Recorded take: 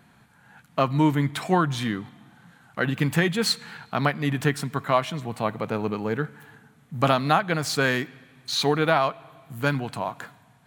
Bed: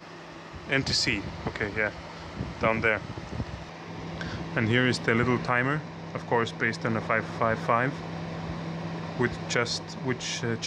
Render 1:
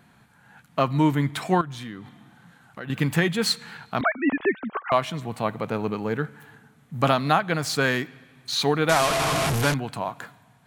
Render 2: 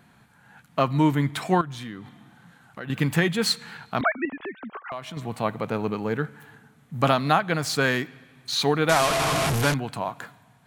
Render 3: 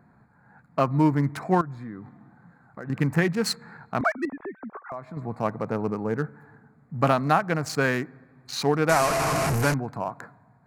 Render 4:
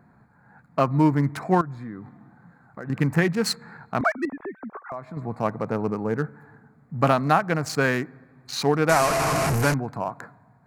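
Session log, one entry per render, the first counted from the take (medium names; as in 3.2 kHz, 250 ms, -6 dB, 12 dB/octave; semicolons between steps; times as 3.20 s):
1.61–2.90 s: compression 2.5:1, threshold -37 dBFS; 4.01–4.92 s: formants replaced by sine waves; 8.89–9.74 s: one-bit delta coder 64 kbps, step -17 dBFS
4.25–5.17 s: compression 2.5:1, threshold -36 dBFS
local Wiener filter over 15 samples; peaking EQ 3.4 kHz -11 dB 0.47 oct
trim +1.5 dB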